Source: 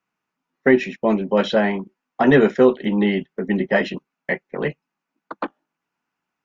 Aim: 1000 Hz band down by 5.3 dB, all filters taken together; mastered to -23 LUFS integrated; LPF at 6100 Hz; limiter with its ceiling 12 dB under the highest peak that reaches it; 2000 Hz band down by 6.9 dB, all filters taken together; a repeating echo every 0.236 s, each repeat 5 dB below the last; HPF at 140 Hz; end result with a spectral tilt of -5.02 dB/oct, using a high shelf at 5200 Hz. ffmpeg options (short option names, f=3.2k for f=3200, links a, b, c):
-af "highpass=140,lowpass=6.1k,equalizer=f=1k:t=o:g=-6.5,equalizer=f=2k:t=o:g=-7,highshelf=f=5.2k:g=7.5,alimiter=limit=-16dB:level=0:latency=1,aecho=1:1:236|472|708|944|1180|1416|1652:0.562|0.315|0.176|0.0988|0.0553|0.031|0.0173,volume=3dB"